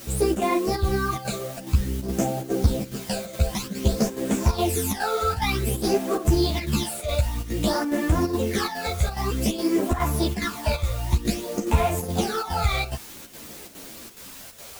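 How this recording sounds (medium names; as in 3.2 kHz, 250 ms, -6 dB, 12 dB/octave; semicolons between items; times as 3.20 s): phasing stages 12, 0.53 Hz, lowest notch 290–4800 Hz; a quantiser's noise floor 8-bit, dither triangular; chopped level 2.4 Hz, depth 60%, duty 80%; a shimmering, thickened sound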